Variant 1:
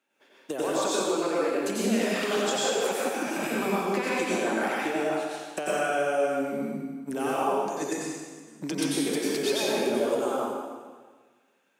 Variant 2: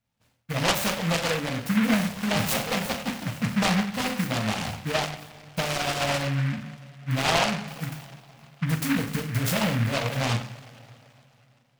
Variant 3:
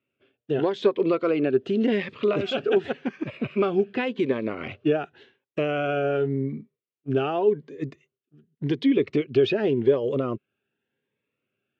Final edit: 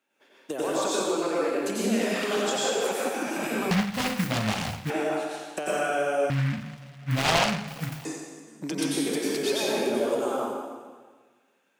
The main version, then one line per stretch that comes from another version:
1
3.71–4.9 from 2
6.3–8.05 from 2
not used: 3

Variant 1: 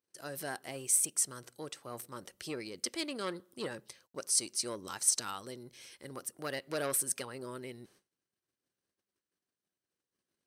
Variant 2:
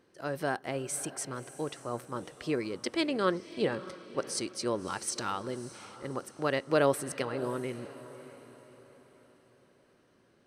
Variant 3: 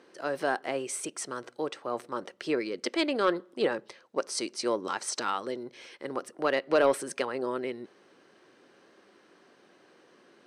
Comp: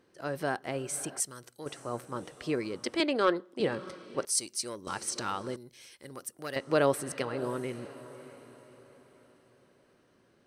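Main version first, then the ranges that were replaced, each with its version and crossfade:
2
1.2–1.66 from 1
3–3.6 from 3
4.25–4.87 from 1
5.56–6.56 from 1

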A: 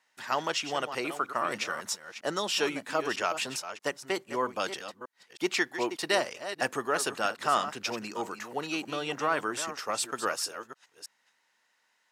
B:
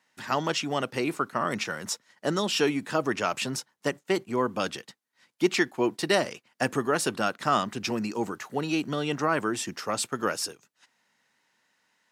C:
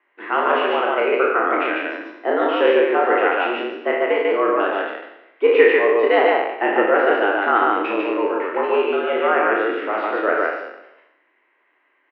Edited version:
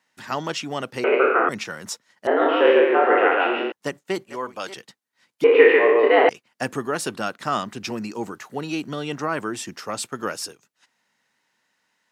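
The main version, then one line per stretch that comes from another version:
B
1.04–1.49 from C
2.27–3.72 from C
4.26–4.77 from A
5.44–6.29 from C

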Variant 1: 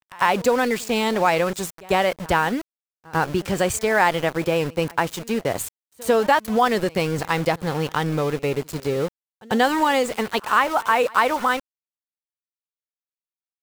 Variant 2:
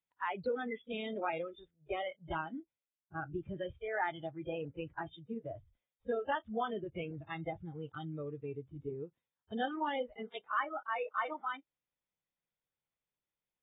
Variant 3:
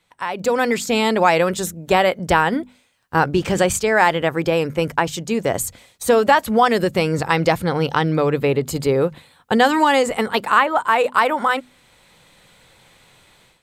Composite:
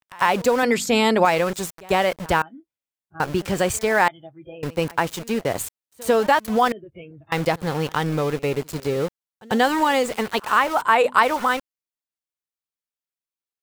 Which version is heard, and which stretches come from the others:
1
0.63–1.25 from 3
2.42–3.2 from 2
4.08–4.63 from 2
6.72–7.32 from 2
10.82–11.23 from 3

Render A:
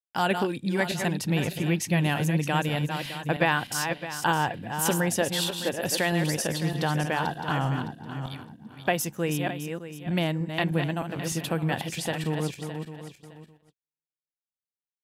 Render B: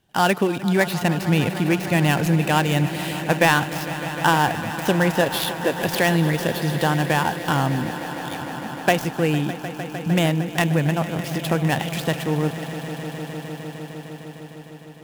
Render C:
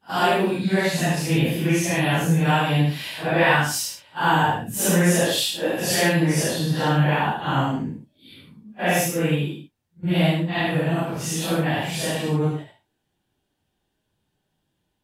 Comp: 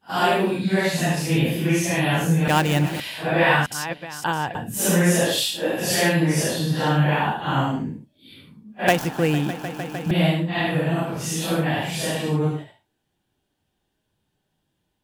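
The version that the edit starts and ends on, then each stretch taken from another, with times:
C
2.48–3 from B
3.66–4.55 from A
8.88–10.11 from B

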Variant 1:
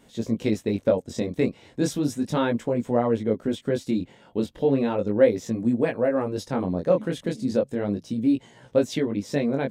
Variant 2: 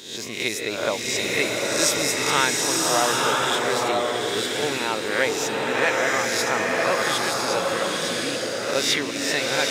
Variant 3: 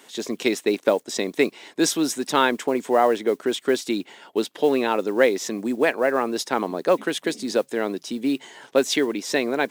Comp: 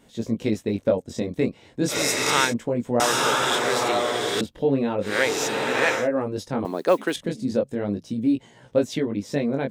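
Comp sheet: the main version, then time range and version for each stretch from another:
1
1.92–2.49 from 2, crossfade 0.10 s
3–4.41 from 2
5.08–6 from 2, crossfade 0.16 s
6.65–7.16 from 3

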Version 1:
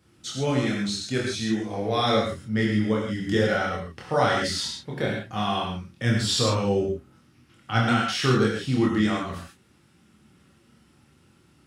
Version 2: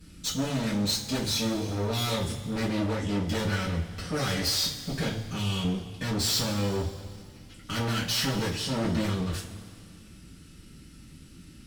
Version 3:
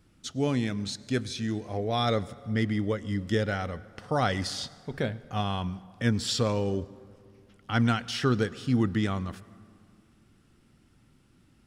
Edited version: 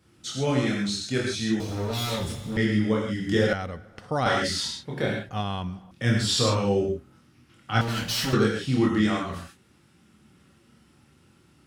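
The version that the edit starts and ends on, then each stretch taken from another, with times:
1
1.6–2.57 from 2
3.53–4.26 from 3
5.29–5.91 from 3
7.81–8.33 from 2

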